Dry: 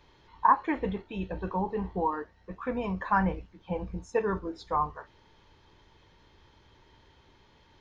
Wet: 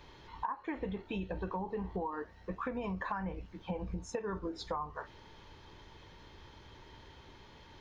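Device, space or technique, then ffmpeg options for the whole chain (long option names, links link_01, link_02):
serial compression, peaks first: -af "acompressor=threshold=-35dB:ratio=6,acompressor=threshold=-42dB:ratio=2,volume=5dB"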